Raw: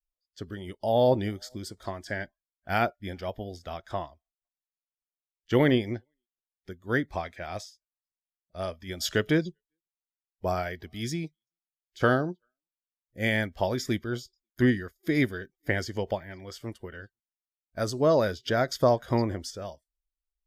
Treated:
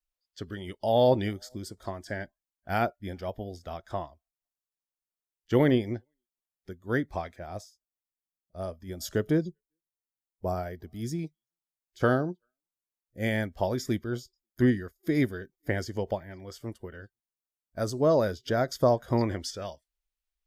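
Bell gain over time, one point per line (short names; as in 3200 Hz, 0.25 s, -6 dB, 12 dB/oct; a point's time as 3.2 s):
bell 2700 Hz 2 oct
+2.5 dB
from 1.33 s -5.5 dB
from 7.36 s -14.5 dB
from 11.19 s -6.5 dB
from 19.21 s +5 dB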